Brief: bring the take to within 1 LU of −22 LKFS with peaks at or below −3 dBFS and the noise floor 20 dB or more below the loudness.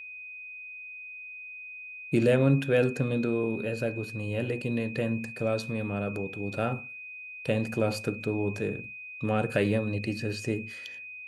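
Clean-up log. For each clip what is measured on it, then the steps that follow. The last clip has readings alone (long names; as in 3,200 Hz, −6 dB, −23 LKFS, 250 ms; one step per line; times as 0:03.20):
interfering tone 2,500 Hz; level of the tone −40 dBFS; integrated loudness −30.5 LKFS; sample peak −11.5 dBFS; target loudness −22.0 LKFS
→ notch filter 2,500 Hz, Q 30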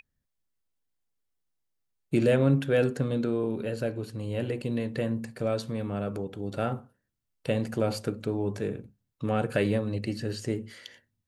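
interfering tone none found; integrated loudness −29.5 LKFS; sample peak −12.0 dBFS; target loudness −22.0 LKFS
→ level +7.5 dB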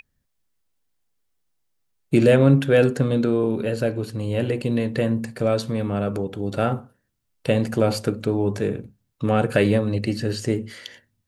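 integrated loudness −22.0 LKFS; sample peak −4.5 dBFS; background noise floor −74 dBFS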